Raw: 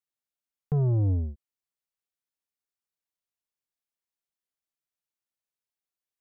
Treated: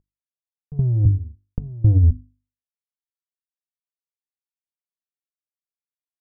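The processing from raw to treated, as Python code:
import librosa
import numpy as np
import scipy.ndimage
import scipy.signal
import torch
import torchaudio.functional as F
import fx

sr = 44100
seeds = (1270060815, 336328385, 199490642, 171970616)

y = fx.cvsd(x, sr, bps=64000)
y = fx.low_shelf(y, sr, hz=270.0, db=11.5)
y = y + 10.0 ** (-5.0 / 20.0) * np.pad(y, (int(860 * sr / 1000.0), 0))[:len(y)]
y = fx.step_gate(y, sr, bpm=114, pattern='x..xx.xx...', floor_db=-24.0, edge_ms=4.5)
y = fx.lowpass(y, sr, hz=1200.0, slope=6)
y = fx.hum_notches(y, sr, base_hz=50, count=7)
y = fx.over_compress(y, sr, threshold_db=-21.0, ratio=-1.0)
y = fx.tilt_eq(y, sr, slope=-2.0)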